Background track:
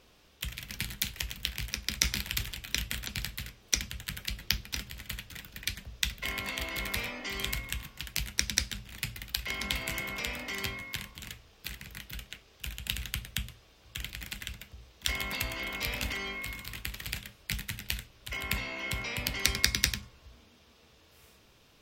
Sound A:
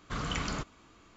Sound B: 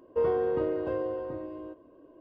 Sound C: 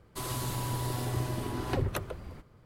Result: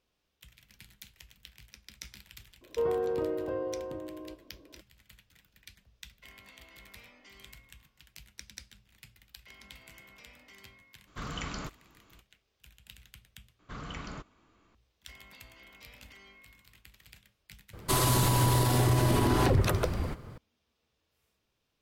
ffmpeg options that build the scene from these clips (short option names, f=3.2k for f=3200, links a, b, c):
-filter_complex "[1:a]asplit=2[a][b];[0:a]volume=-18.5dB[c];[b]aemphasis=mode=reproduction:type=cd[d];[3:a]alimiter=level_in=27dB:limit=-1dB:release=50:level=0:latency=1[e];[c]asplit=2[f][g];[f]atrim=end=13.594[h];[d]atrim=end=1.16,asetpts=PTS-STARTPTS,volume=-7dB[i];[g]atrim=start=14.746[j];[2:a]atrim=end=2.2,asetpts=PTS-STARTPTS,volume=-3dB,afade=t=in:d=0.004:c=hsin,afade=t=out:st=2.196:d=0.004:c=hsin,adelay=2610[k];[a]atrim=end=1.16,asetpts=PTS-STARTPTS,volume=-4dB,afade=t=in:d=0.02,afade=t=out:st=1.14:d=0.02,adelay=487746S[l];[e]atrim=end=2.65,asetpts=PTS-STARTPTS,volume=-15dB,afade=t=in:d=0.004:c=hsin,afade=t=out:st=2.646:d=0.004:c=hsin,adelay=17730[m];[h][i]acrossfade=d=0.004:c1=hsin:c2=hsin[n];[n][j]acrossfade=d=0.004:c1=hsin:c2=hsin[o];[o][k][l][m]amix=inputs=4:normalize=0"